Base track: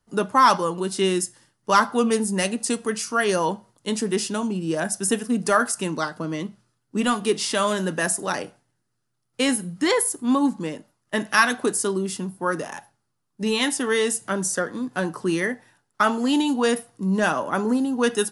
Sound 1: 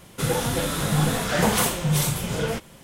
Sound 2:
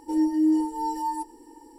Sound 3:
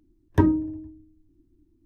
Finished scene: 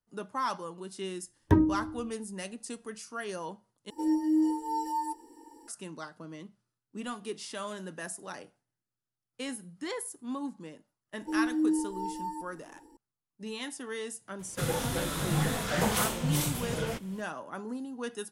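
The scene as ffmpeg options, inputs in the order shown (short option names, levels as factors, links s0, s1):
-filter_complex "[2:a]asplit=2[s0][s1];[0:a]volume=0.158[s2];[3:a]agate=range=0.224:threshold=0.00316:ratio=16:release=100:detection=peak[s3];[s0]lowshelf=f=130:g=-11.5[s4];[s1]lowshelf=f=370:g=5.5[s5];[s2]asplit=2[s6][s7];[s6]atrim=end=3.904[s8];[s4]atrim=end=1.78,asetpts=PTS-STARTPTS,volume=0.708[s9];[s7]atrim=start=5.676[s10];[s3]atrim=end=1.85,asetpts=PTS-STARTPTS,volume=0.668,afade=t=in:d=0.004:c=hsin,afade=t=out:st=1.846:d=0.004:c=hsin,adelay=1130[s11];[s5]atrim=end=1.78,asetpts=PTS-STARTPTS,volume=0.335,afade=t=in:d=0.004:c=hsin,afade=t=out:st=1.776:d=0.004:c=hsin,adelay=11190[s12];[1:a]atrim=end=2.83,asetpts=PTS-STARTPTS,volume=0.447,afade=t=in:d=0.004:c=hsin,afade=t=out:st=2.826:d=0.004:c=hsin,adelay=14390[s13];[s8][s9]acrossfade=d=0.004:c1=hsin:c2=hsin[s14];[s14][s10]acrossfade=d=0.004:c1=hsin:c2=hsin[s15];[s15][s11][s12][s13]amix=inputs=4:normalize=0"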